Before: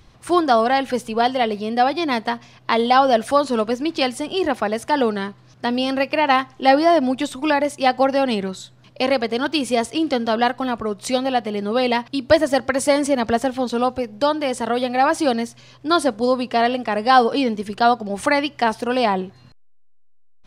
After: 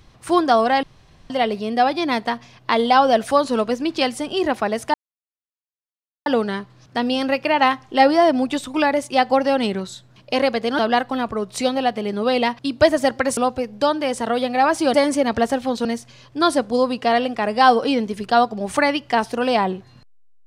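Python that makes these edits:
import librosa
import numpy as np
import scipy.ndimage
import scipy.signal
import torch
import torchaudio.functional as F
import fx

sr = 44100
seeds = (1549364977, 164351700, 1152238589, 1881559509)

y = fx.edit(x, sr, fx.room_tone_fill(start_s=0.83, length_s=0.47),
    fx.insert_silence(at_s=4.94, length_s=1.32),
    fx.cut(start_s=9.47, length_s=0.81),
    fx.move(start_s=12.86, length_s=0.91, to_s=15.34), tone=tone)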